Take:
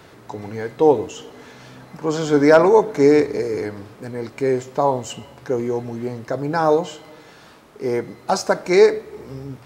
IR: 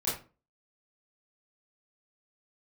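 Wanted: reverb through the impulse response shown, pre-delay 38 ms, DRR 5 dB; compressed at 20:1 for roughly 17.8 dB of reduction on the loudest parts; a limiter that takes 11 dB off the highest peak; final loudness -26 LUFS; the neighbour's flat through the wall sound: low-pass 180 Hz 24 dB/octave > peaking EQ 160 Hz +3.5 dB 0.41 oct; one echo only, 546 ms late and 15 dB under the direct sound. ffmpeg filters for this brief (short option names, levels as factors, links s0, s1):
-filter_complex "[0:a]acompressor=threshold=0.0562:ratio=20,alimiter=limit=0.0708:level=0:latency=1,aecho=1:1:546:0.178,asplit=2[s0][s1];[1:a]atrim=start_sample=2205,adelay=38[s2];[s1][s2]afir=irnorm=-1:irlink=0,volume=0.251[s3];[s0][s3]amix=inputs=2:normalize=0,lowpass=f=180:w=0.5412,lowpass=f=180:w=1.3066,equalizer=f=160:t=o:w=0.41:g=3.5,volume=5.96"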